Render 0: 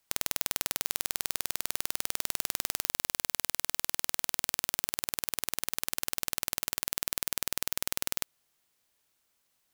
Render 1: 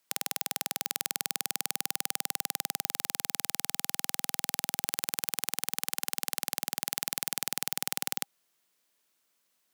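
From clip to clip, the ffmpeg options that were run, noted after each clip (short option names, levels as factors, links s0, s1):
-af "highpass=f=160:w=0.5412,highpass=f=160:w=1.3066,bandreject=f=800:w=20"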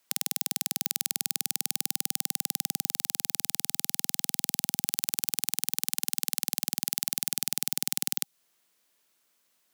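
-filter_complex "[0:a]acrossover=split=240|3000[s0][s1][s2];[s1]acompressor=threshold=0.00447:ratio=6[s3];[s0][s3][s2]amix=inputs=3:normalize=0,volume=1.5"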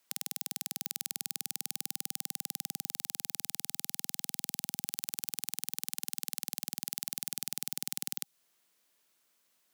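-af "alimiter=limit=0.473:level=0:latency=1:release=43,volume=0.794"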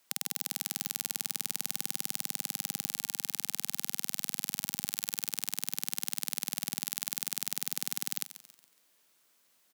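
-filter_complex "[0:a]asplit=2[s0][s1];[s1]asoftclip=type=hard:threshold=0.119,volume=0.631[s2];[s0][s2]amix=inputs=2:normalize=0,aecho=1:1:139|278|417|556:0.211|0.0867|0.0355|0.0146"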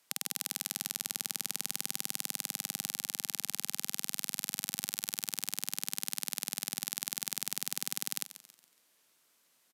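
-af "aresample=32000,aresample=44100"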